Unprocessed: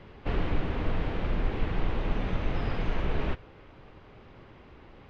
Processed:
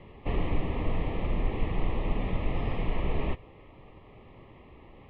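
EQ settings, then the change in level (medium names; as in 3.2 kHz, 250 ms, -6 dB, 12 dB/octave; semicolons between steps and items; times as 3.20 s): Butterworth band-stop 1.5 kHz, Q 2.8; low-pass 3.3 kHz 24 dB/octave; 0.0 dB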